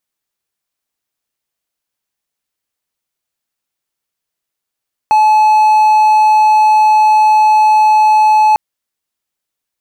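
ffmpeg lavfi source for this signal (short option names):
-f lavfi -i "aevalsrc='0.668*(1-4*abs(mod(859*t+0.25,1)-0.5))':d=3.45:s=44100"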